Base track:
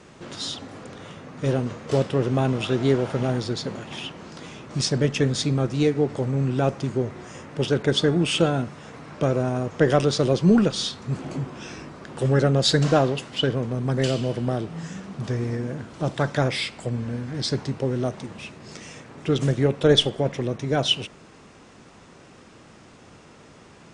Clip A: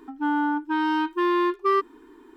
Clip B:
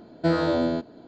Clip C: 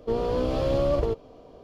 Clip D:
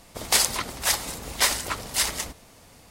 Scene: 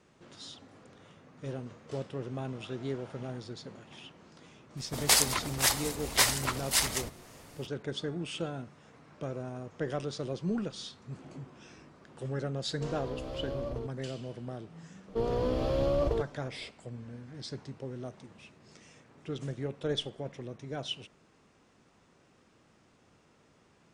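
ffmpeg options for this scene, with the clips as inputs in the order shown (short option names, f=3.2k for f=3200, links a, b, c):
-filter_complex "[3:a]asplit=2[a][b];[0:a]volume=-15.5dB[c];[4:a]atrim=end=2.9,asetpts=PTS-STARTPTS,volume=-3dB,afade=t=in:d=0.004:c=hsin,afade=t=out:st=2.896:d=0.004:c=hsin,adelay=210357S[d];[a]atrim=end=1.63,asetpts=PTS-STARTPTS,volume=-13.5dB,afade=t=in:d=0.004:c=hsin,afade=t=out:st=1.626:d=0.004:c=hsin,adelay=12730[e];[b]atrim=end=1.63,asetpts=PTS-STARTPTS,volume=-4.5dB,afade=t=in:d=0.004:c=hsin,afade=t=out:st=1.626:d=0.004:c=hsin,adelay=665028S[f];[c][d][e][f]amix=inputs=4:normalize=0"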